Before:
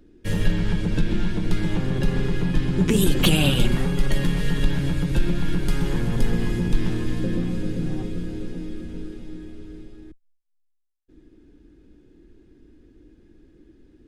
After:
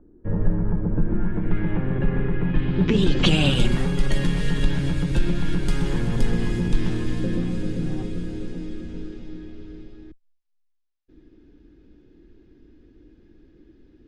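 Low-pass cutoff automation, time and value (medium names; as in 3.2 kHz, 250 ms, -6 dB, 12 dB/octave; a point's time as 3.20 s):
low-pass 24 dB/octave
0.98 s 1.2 kHz
1.57 s 2.2 kHz
2.38 s 2.2 kHz
2.88 s 4.4 kHz
3.71 s 10 kHz
8.30 s 10 kHz
9.46 s 5.7 kHz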